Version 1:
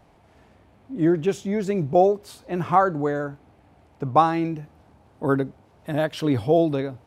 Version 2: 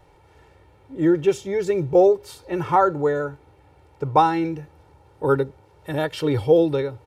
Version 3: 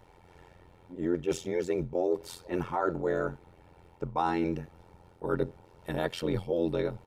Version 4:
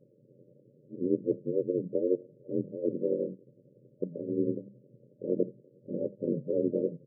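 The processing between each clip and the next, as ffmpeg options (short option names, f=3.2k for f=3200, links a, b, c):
-af "aecho=1:1:2.2:0.82"
-af "areverse,acompressor=threshold=-23dB:ratio=10,areverse,tremolo=f=87:d=0.919,volume=1dB"
-af "bandreject=f=50:t=h:w=6,bandreject=f=100:t=h:w=6,bandreject=f=150:t=h:w=6,aeval=exprs='val(0)*sin(2*PI*49*n/s)':c=same,afftfilt=real='re*between(b*sr/4096,110,600)':imag='im*between(b*sr/4096,110,600)':win_size=4096:overlap=0.75,volume=3.5dB"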